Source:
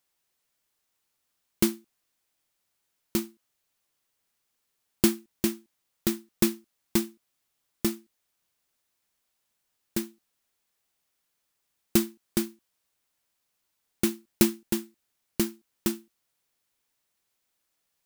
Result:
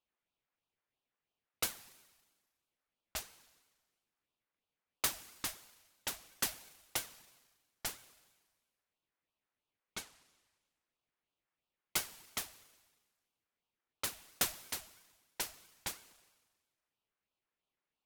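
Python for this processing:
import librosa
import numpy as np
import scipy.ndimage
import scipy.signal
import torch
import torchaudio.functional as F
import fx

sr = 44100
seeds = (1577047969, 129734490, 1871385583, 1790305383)

y = fx.env_lowpass(x, sr, base_hz=1800.0, full_db=-23.5)
y = scipy.signal.sosfilt(scipy.signal.butter(4, 560.0, 'highpass', fs=sr, output='sos'), y)
y = fx.rev_schroeder(y, sr, rt60_s=1.4, comb_ms=31, drr_db=15.0)
y = fx.ring_lfo(y, sr, carrier_hz=1100.0, swing_pct=75, hz=3.0)
y = y * 10.0 ** (-1.0 / 20.0)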